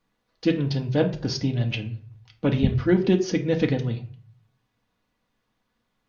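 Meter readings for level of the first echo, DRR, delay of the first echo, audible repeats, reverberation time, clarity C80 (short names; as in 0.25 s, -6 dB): none, 2.5 dB, none, none, 0.45 s, 17.0 dB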